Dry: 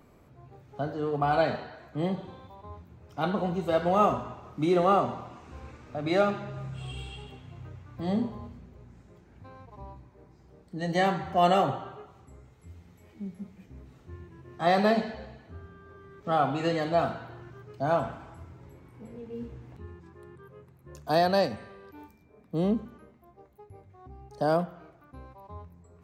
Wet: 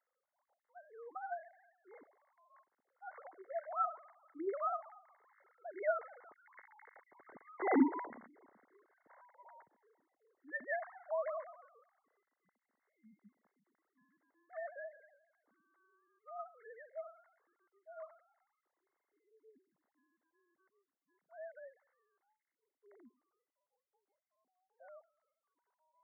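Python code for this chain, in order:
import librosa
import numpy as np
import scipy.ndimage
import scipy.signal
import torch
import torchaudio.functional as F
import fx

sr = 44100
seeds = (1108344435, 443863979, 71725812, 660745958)

y = fx.sine_speech(x, sr)
y = fx.doppler_pass(y, sr, speed_mps=17, closest_m=4.0, pass_at_s=7.84)
y = fx.brickwall_lowpass(y, sr, high_hz=2200.0)
y = fx.tilt_eq(y, sr, slope=4.0)
y = F.gain(torch.from_numpy(y), 9.5).numpy()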